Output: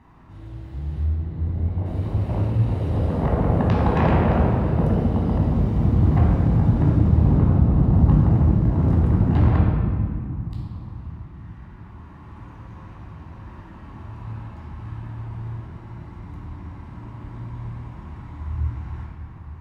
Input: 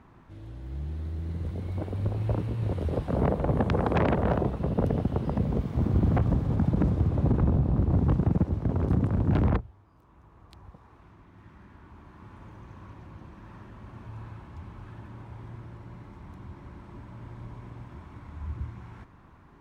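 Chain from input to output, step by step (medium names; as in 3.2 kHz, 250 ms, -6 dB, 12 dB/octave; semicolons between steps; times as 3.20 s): 1.03–1.86 s: low-pass 1.3 kHz 6 dB/octave; reverberation RT60 2.3 s, pre-delay 13 ms, DRR -4 dB; trim -2.5 dB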